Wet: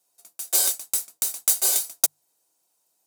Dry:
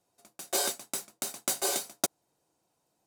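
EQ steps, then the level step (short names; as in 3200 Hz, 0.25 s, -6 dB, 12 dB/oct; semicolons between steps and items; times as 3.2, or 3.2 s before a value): RIAA curve recording; notches 50/100/150 Hz; -2.5 dB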